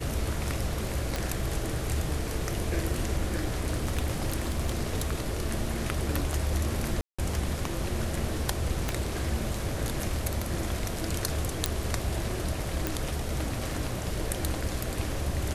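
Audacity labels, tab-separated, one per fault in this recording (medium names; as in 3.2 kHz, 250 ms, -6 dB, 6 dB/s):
1.160000	1.160000	pop
3.260000	5.400000	clipped -22 dBFS
7.010000	7.180000	dropout 175 ms
8.890000	8.890000	pop
11.660000	11.660000	pop
12.870000	12.870000	pop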